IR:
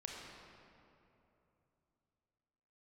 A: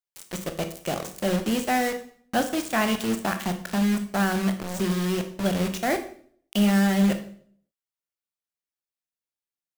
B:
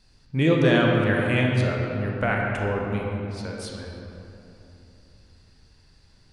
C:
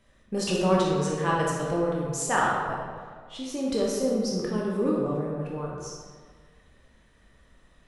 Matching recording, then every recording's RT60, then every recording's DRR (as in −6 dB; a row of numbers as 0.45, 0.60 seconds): B; 0.55, 3.0, 1.7 seconds; 7.0, −1.5, −4.0 decibels